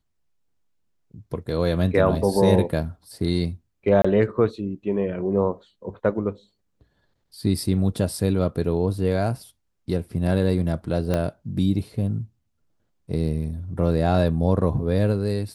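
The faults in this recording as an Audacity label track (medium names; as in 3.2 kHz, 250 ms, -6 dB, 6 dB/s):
4.020000	4.040000	dropout 25 ms
11.140000	11.140000	pop -11 dBFS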